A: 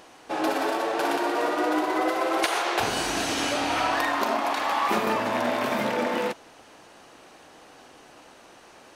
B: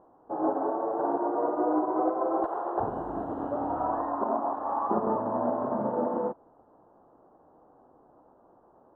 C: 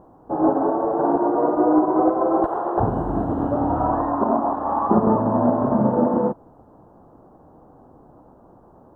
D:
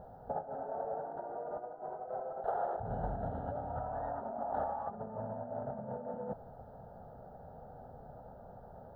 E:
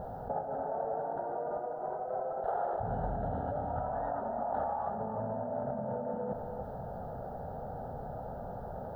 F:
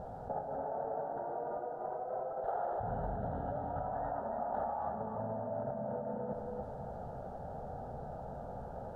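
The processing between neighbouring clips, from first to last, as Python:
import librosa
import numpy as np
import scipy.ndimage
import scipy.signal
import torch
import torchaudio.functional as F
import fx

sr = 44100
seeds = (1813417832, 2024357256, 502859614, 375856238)

y1 = scipy.signal.sosfilt(scipy.signal.cheby2(4, 40, 2100.0, 'lowpass', fs=sr, output='sos'), x)
y1 = fx.upward_expand(y1, sr, threshold_db=-36.0, expansion=1.5)
y2 = fx.bass_treble(y1, sr, bass_db=12, treble_db=3)
y2 = F.gain(torch.from_numpy(y2), 7.0).numpy()
y3 = fx.over_compress(y2, sr, threshold_db=-29.0, ratio=-1.0)
y3 = fx.fixed_phaser(y3, sr, hz=1600.0, stages=8)
y3 = F.gain(torch.from_numpy(y3), -7.0).numpy()
y4 = y3 + 10.0 ** (-11.0 / 20.0) * np.pad(y3, (int(295 * sr / 1000.0), 0))[:len(y3)]
y4 = fx.env_flatten(y4, sr, amount_pct=50)
y5 = y4 + 10.0 ** (-7.5 / 20.0) * np.pad(y4, (int(281 * sr / 1000.0), 0))[:len(y4)]
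y5 = np.interp(np.arange(len(y5)), np.arange(len(y5))[::2], y5[::2])
y5 = F.gain(torch.from_numpy(y5), -3.5).numpy()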